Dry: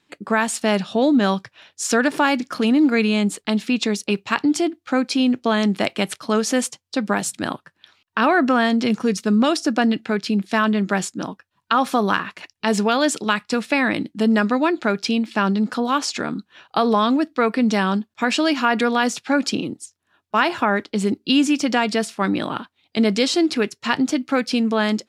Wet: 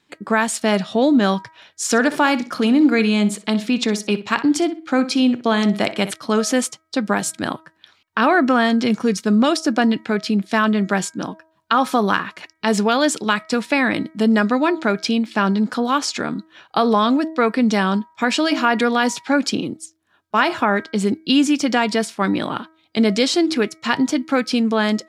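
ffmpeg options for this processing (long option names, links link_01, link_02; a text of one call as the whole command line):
ffmpeg -i in.wav -filter_complex "[0:a]asettb=1/sr,asplit=3[link_01][link_02][link_03];[link_01]atrim=end=1.834[link_04];[link_02]atrim=start=1.83:end=6.11,asetpts=PTS-STARTPTS,afade=type=in:duration=0.004:curve=qsin,afade=type=out:start_time=4.276:duration=0.004:curve=qsin,asplit=2[link_05][link_06];[link_06]adelay=62,lowpass=frequency=4600:poles=1,volume=-13.5dB,asplit=2[link_07][link_08];[link_08]adelay=62,lowpass=frequency=4600:poles=1,volume=0.25,asplit=2[link_09][link_10];[link_10]adelay=62,lowpass=frequency=4600:poles=1,volume=0.25[link_11];[link_05][link_07][link_09][link_11]amix=inputs=4:normalize=0,atrim=end_sample=188748[link_12];[link_03]atrim=start=6.106[link_13];[link_04][link_12]acrossfade=duration=0.004:curve1=hsin:curve2=qsin[link_14];[link_14][link_13]acrossfade=duration=0.004:curve1=qsin:curve2=hsin,bandreject=frequency=2700:width=19,bandreject=frequency=319.9:width_type=h:width=4,bandreject=frequency=639.8:width_type=h:width=4,bandreject=frequency=959.7:width_type=h:width=4,bandreject=frequency=1279.6:width_type=h:width=4,bandreject=frequency=1599.5:width_type=h:width=4,bandreject=frequency=1919.4:width_type=h:width=4,bandreject=frequency=2239.3:width_type=h:width=4,volume=1.5dB" out.wav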